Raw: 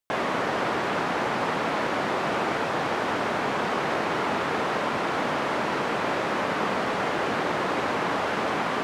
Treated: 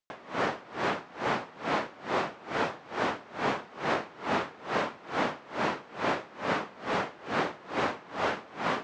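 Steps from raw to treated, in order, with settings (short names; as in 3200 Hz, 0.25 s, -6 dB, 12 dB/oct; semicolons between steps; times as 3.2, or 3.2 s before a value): LPF 7300 Hz 24 dB/oct; dB-linear tremolo 2.3 Hz, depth 25 dB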